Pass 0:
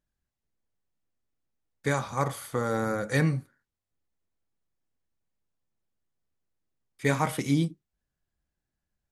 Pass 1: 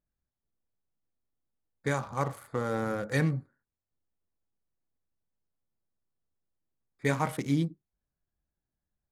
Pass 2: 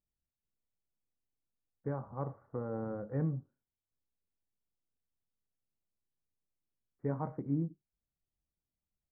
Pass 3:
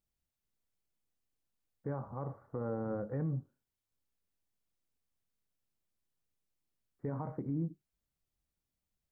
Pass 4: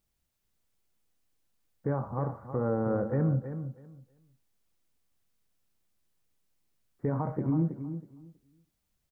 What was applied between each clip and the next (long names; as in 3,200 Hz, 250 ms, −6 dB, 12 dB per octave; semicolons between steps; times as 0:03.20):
adaptive Wiener filter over 15 samples; level −2.5 dB
Gaussian smoothing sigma 8.1 samples; level −5.5 dB
brickwall limiter −31 dBFS, peak gain reduction 9 dB; level +3 dB
repeating echo 322 ms, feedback 19%, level −10 dB; level +8 dB